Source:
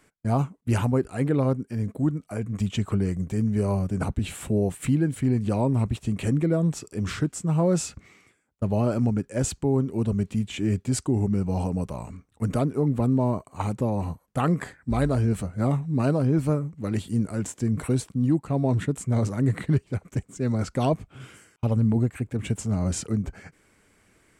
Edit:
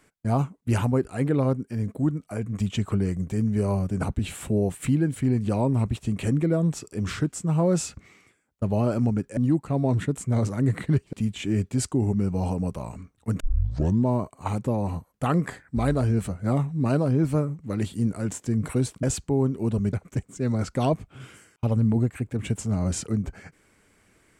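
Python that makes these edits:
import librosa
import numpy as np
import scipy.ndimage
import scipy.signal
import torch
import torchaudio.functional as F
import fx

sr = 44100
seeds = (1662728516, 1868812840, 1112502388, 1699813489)

y = fx.edit(x, sr, fx.swap(start_s=9.37, length_s=0.9, other_s=18.17, other_length_s=1.76),
    fx.tape_start(start_s=12.54, length_s=0.66), tone=tone)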